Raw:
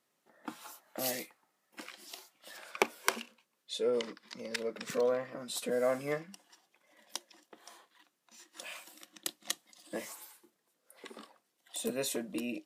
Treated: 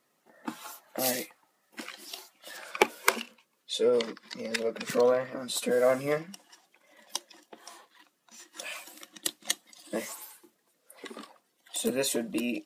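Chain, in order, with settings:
spectral magnitudes quantised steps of 15 dB
level +6.5 dB

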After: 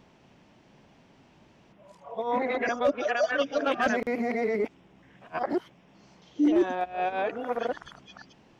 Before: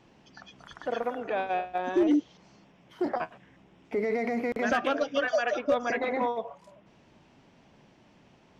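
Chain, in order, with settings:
played backwards from end to start
level +1 dB

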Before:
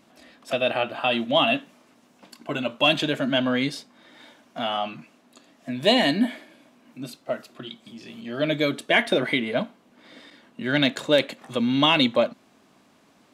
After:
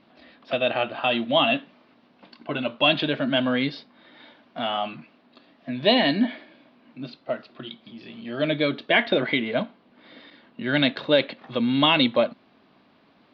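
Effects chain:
Butterworth low-pass 4,600 Hz 48 dB per octave

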